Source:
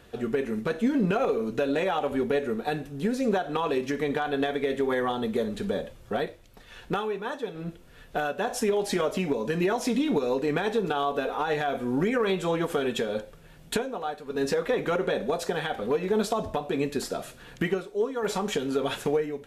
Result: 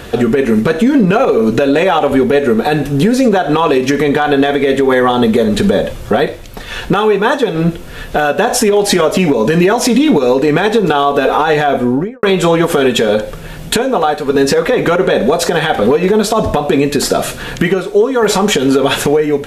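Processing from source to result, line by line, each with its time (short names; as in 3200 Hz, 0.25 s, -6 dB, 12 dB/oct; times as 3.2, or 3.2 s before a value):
11.51–12.23 studio fade out
whole clip: compressor, threshold -30 dBFS; maximiser +24.5 dB; gain -1 dB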